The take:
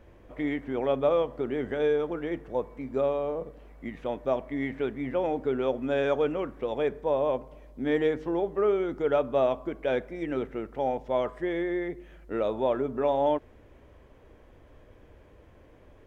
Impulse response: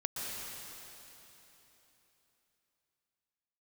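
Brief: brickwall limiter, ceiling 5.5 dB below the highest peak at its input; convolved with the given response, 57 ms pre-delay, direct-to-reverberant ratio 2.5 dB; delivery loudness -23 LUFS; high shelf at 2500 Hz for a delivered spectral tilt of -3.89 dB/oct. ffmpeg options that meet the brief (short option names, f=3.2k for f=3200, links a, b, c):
-filter_complex "[0:a]highshelf=f=2.5k:g=-9,alimiter=limit=-19.5dB:level=0:latency=1,asplit=2[a][b];[1:a]atrim=start_sample=2205,adelay=57[c];[b][c]afir=irnorm=-1:irlink=0,volume=-6dB[d];[a][d]amix=inputs=2:normalize=0,volume=6dB"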